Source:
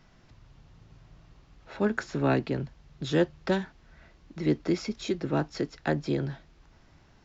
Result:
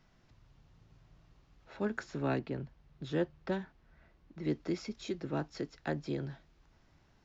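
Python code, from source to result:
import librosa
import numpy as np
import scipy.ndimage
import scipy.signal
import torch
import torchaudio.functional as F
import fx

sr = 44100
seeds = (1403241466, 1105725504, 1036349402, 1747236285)

y = fx.high_shelf(x, sr, hz=fx.line((2.38, 5100.0), (4.44, 3900.0)), db=-11.0, at=(2.38, 4.44), fade=0.02)
y = y * 10.0 ** (-8.0 / 20.0)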